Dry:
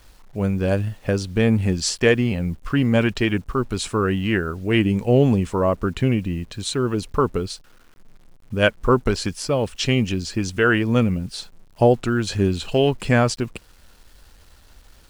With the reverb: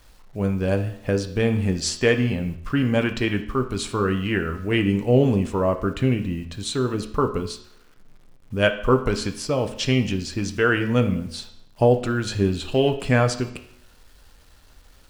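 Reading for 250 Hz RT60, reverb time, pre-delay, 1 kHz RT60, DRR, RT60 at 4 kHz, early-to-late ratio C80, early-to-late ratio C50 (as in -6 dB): 0.70 s, 0.70 s, 5 ms, 0.65 s, 6.0 dB, 0.65 s, 14.0 dB, 11.0 dB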